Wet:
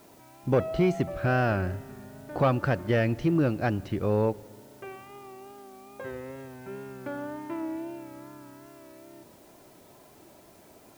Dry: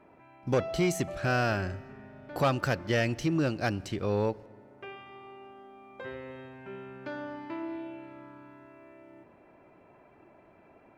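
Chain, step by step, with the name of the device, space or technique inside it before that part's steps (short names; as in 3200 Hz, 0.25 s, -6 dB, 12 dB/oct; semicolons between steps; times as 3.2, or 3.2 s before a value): cassette deck with a dirty head (tape spacing loss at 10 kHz 28 dB; wow and flutter; white noise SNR 30 dB); gain +4.5 dB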